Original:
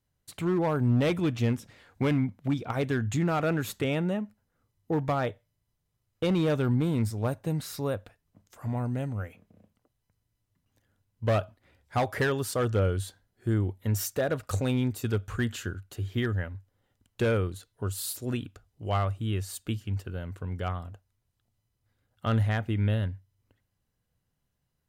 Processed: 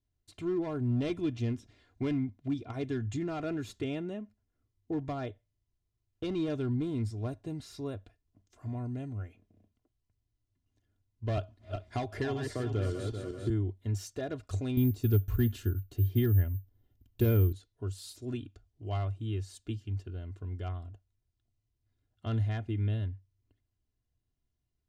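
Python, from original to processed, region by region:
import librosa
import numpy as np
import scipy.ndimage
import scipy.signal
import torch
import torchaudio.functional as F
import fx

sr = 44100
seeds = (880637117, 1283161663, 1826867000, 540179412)

y = fx.chain(x, sr, fx.reverse_delay_fb(ms=194, feedback_pct=52, wet_db=-6),
    fx.band_squash(depth_pct=70), at=(11.37, 13.5))
y = fx.chain(y, sr, fx.low_shelf(hz=320.0, db=10.0),
    fx.resample_bad(factor=3, down='filtered', up='zero_stuff'), at=(14.77, 17.53))
y = scipy.signal.sosfilt(scipy.signal.butter(2, 5300.0, 'lowpass', fs=sr, output='sos'), y)
y = fx.peak_eq(y, sr, hz=1300.0, db=-10.5, octaves=2.9)
y = y + 0.62 * np.pad(y, (int(2.9 * sr / 1000.0), 0))[:len(y)]
y = y * librosa.db_to_amplitude(-3.5)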